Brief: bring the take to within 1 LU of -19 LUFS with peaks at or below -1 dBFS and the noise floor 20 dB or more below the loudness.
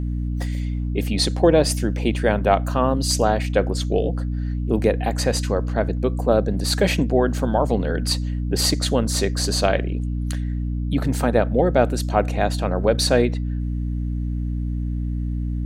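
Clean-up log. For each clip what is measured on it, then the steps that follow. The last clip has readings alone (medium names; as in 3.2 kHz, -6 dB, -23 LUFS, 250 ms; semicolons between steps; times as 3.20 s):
hum 60 Hz; highest harmonic 300 Hz; hum level -22 dBFS; loudness -21.5 LUFS; peak level -2.0 dBFS; loudness target -19.0 LUFS
-> hum notches 60/120/180/240/300 Hz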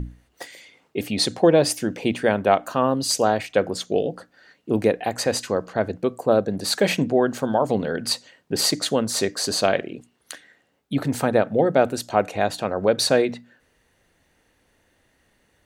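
hum not found; loudness -22.0 LUFS; peak level -3.0 dBFS; loudness target -19.0 LUFS
-> trim +3 dB; peak limiter -1 dBFS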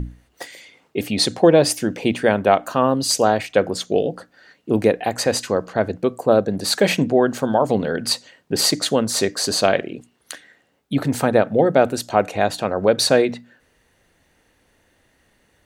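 loudness -19.0 LUFS; peak level -1.0 dBFS; noise floor -63 dBFS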